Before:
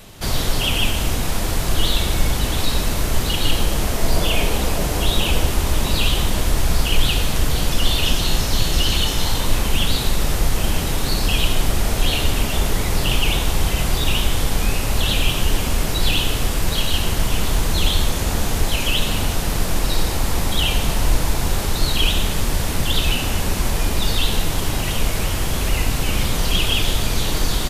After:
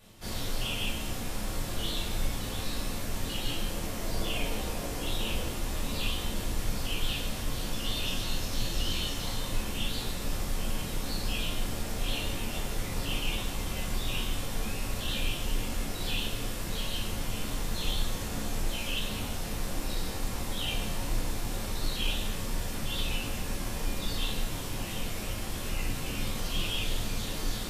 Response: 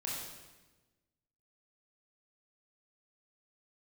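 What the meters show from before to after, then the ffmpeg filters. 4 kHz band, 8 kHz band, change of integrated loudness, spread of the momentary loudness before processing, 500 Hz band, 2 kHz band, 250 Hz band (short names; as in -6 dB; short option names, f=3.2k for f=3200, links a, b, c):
-13.0 dB, -12.5 dB, -13.0 dB, 3 LU, -12.5 dB, -12.5 dB, -11.0 dB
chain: -filter_complex "[1:a]atrim=start_sample=2205,afade=t=out:st=0.18:d=0.01,atrim=end_sample=8379,asetrate=88200,aresample=44100[a];[0:a][a]afir=irnorm=-1:irlink=0,volume=-7.5dB"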